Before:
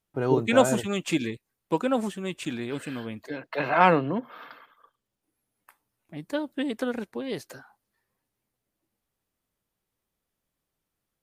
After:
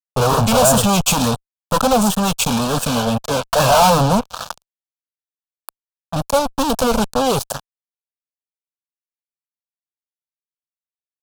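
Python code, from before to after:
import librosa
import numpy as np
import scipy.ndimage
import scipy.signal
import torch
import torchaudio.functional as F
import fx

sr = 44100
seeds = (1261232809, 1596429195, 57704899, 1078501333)

y = fx.fuzz(x, sr, gain_db=40.0, gate_db=-41.0)
y = fx.fixed_phaser(y, sr, hz=820.0, stages=4)
y = fx.wow_flutter(y, sr, seeds[0], rate_hz=2.1, depth_cents=77.0)
y = F.gain(torch.from_numpy(y), 5.5).numpy()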